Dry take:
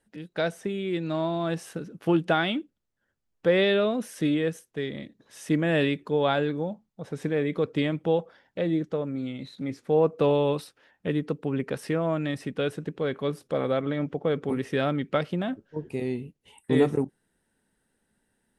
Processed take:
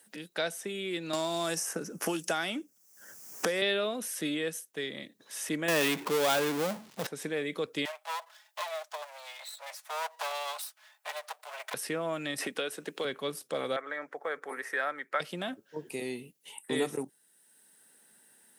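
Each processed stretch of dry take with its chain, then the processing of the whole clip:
1.13–3.62 s: resonant high shelf 4.7 kHz +7 dB, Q 3 + three bands compressed up and down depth 100%
5.68–7.07 s: low-pass 4 kHz + power-law waveshaper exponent 0.5
7.85–11.74 s: comb filter that takes the minimum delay 4.7 ms + Chebyshev high-pass 610 Hz, order 5
12.38–13.05 s: peaking EQ 120 Hz -13.5 dB 1.5 oct + three bands compressed up and down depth 100%
13.76–15.20 s: high-pass 600 Hz + resonant high shelf 2.3 kHz -8.5 dB, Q 3
whole clip: high-pass 96 Hz; RIAA curve recording; three bands compressed up and down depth 40%; trim -4 dB

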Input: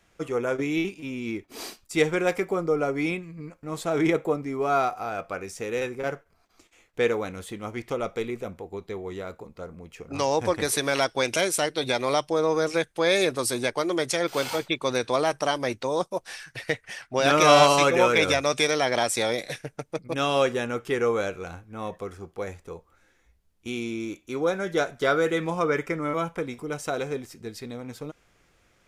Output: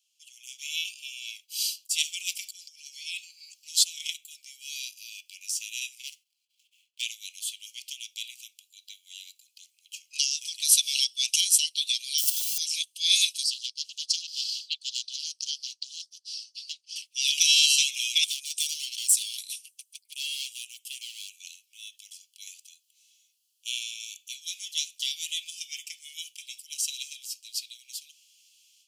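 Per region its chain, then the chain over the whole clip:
2.42–3.84 s: peaking EQ 4.9 kHz +8.5 dB 1 oct + compressor with a negative ratio -32 dBFS
6.07–7.02 s: median filter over 9 samples + band-stop 1.7 kHz, Q 6.1 + tape noise reduction on one side only decoder only
12.18–12.58 s: zero-crossing glitches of -22 dBFS + comb of notches 320 Hz
13.43–16.96 s: band-pass filter 4.7 kHz, Q 4.2 + loudspeaker Doppler distortion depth 0.17 ms
18.24–21.40 s: high-order bell 3.2 kHz -8 dB 2.3 oct + hard clipper -24 dBFS
whole clip: steep high-pass 2.8 kHz 72 dB/octave; band-stop 3.7 kHz, Q 11; level rider gain up to 14.5 dB; trim -3 dB

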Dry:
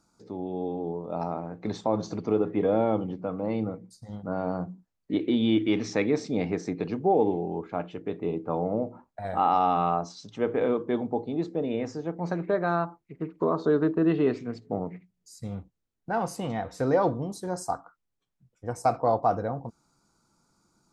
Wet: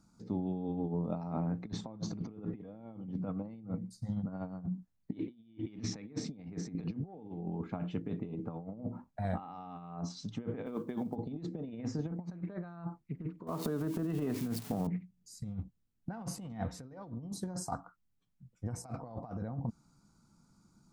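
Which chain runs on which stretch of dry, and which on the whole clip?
10.66–11.16 s: companded quantiser 8-bit + high-pass 340 Hz 6 dB/octave
13.47–14.87 s: zero-crossing glitches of -29.5 dBFS + peaking EQ 800 Hz +7 dB 1.6 oct + compression 16:1, threshold -28 dBFS
whole clip: resonant low shelf 290 Hz +8 dB, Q 1.5; compressor with a negative ratio -29 dBFS, ratio -0.5; trim -8.5 dB

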